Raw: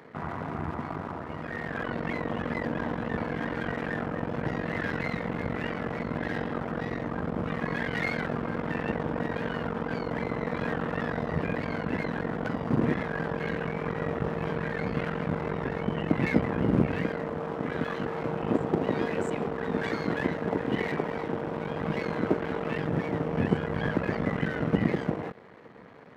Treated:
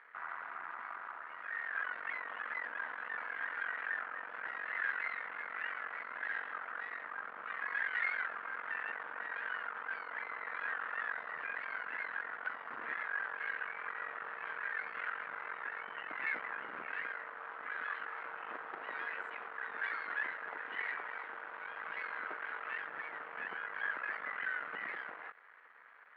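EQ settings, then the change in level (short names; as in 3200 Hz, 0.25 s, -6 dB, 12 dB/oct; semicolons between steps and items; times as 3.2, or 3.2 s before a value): resonant high-pass 1500 Hz, resonance Q 2.3; air absorption 460 m; -3.5 dB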